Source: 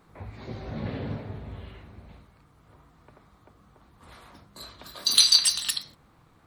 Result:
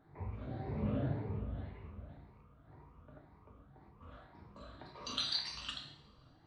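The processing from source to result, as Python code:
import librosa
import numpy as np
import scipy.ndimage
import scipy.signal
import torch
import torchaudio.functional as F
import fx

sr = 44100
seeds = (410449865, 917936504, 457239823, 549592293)

y = fx.spec_ripple(x, sr, per_octave=0.82, drift_hz=1.9, depth_db=11)
y = fx.spacing_loss(y, sr, db_at_10k=37)
y = fx.rev_double_slope(y, sr, seeds[0], early_s=0.69, late_s=2.7, knee_db=-26, drr_db=1.5)
y = fx.am_noise(y, sr, seeds[1], hz=5.7, depth_pct=55)
y = y * 10.0 ** (-3.0 / 20.0)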